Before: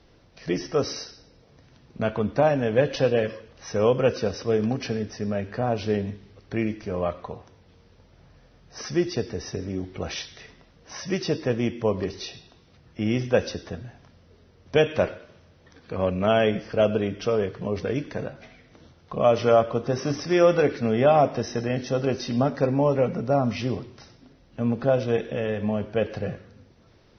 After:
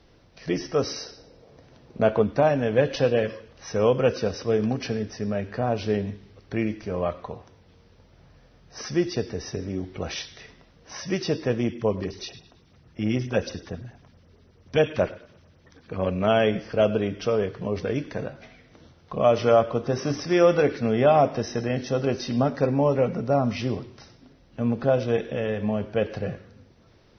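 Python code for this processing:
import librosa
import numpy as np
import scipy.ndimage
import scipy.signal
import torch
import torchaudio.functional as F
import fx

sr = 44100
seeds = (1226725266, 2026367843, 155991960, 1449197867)

y = fx.peak_eq(x, sr, hz=530.0, db=7.5, octaves=1.6, at=(1.03, 2.24))
y = fx.filter_lfo_notch(y, sr, shape='sine', hz=9.2, low_hz=470.0, high_hz=4800.0, q=1.0, at=(11.61, 16.05), fade=0.02)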